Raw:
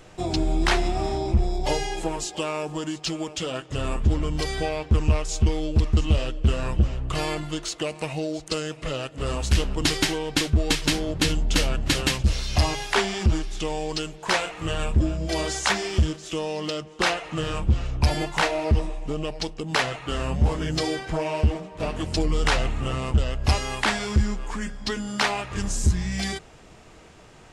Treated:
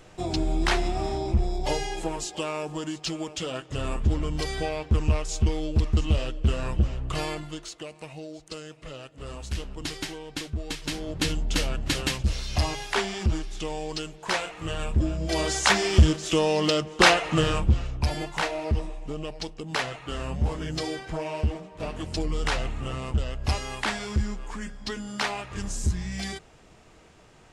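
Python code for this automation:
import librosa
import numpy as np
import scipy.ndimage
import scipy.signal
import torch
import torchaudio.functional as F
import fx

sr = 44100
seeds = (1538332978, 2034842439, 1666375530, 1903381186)

y = fx.gain(x, sr, db=fx.line((7.18, -2.5), (7.87, -11.0), (10.77, -11.0), (11.19, -4.0), (14.84, -4.0), (16.18, 6.0), (17.37, 6.0), (17.98, -5.0)))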